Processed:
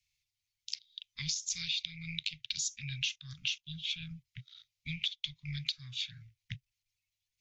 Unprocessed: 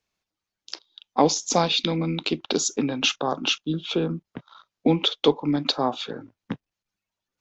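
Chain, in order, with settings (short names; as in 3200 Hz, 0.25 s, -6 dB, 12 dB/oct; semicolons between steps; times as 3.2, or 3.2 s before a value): Chebyshev band-stop 130–2100 Hz, order 4; compressor 5:1, threshold -34 dBFS, peak gain reduction 14.5 dB; gain +1 dB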